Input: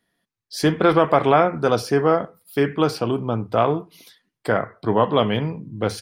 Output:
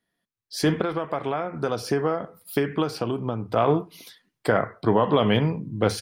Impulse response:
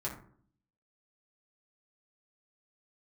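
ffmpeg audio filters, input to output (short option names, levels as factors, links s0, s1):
-filter_complex "[0:a]asettb=1/sr,asplit=3[s0][s1][s2];[s0]atrim=end=0.814[s3];[s1]atrim=start=0.81:end=3.56,asetpts=PTS-STARTPTS,afade=t=in:d=0.004:c=qsin,afade=t=out:st=2.746:d=0.004:c=qsin,acompressor=threshold=0.0562:ratio=12[s4];[s2]atrim=start=3.556[s5];[s3][s4]acrossfade=d=0.004:c1=hsin:c2=qsin[s6];[s6][s5]acrossfade=d=0.004:c1=qsin:c2=hsin,alimiter=limit=0.299:level=0:latency=1:release=60,dynaudnorm=f=400:g=3:m=5.01,volume=0.447"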